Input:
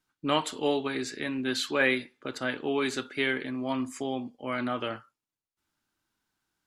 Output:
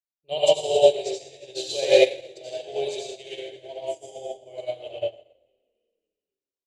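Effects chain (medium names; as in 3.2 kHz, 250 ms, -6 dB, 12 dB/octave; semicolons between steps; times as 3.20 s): FFT filter 160 Hz 0 dB, 260 Hz -27 dB, 370 Hz +4 dB, 680 Hz +13 dB, 1.3 kHz -30 dB, 2.8 kHz +6 dB, 4.3 kHz +9 dB, 7.7 kHz +11 dB, 11 kHz -2 dB; frequency-shifting echo 272 ms, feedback 47%, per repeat -39 Hz, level -13.5 dB; reverberation RT60 1.4 s, pre-delay 68 ms, DRR -6 dB; upward expansion 2.5:1, over -32 dBFS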